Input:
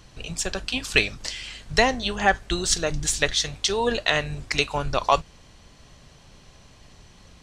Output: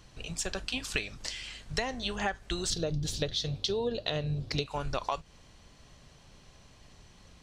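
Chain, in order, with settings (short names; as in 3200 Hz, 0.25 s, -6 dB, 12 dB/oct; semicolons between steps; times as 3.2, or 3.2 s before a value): 2.7–4.66 ten-band EQ 125 Hz +12 dB, 250 Hz +3 dB, 500 Hz +7 dB, 1000 Hz -4 dB, 2000 Hz -9 dB, 4000 Hz +8 dB, 8000 Hz -12 dB; compressor 12:1, threshold -22 dBFS, peak gain reduction 11 dB; gain -5.5 dB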